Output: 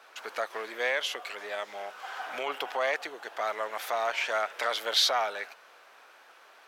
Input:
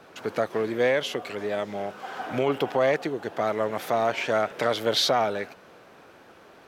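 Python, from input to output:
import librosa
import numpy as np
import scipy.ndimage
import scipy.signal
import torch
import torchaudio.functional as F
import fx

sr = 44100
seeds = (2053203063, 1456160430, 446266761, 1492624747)

y = scipy.signal.sosfilt(scipy.signal.butter(2, 910.0, 'highpass', fs=sr, output='sos'), x)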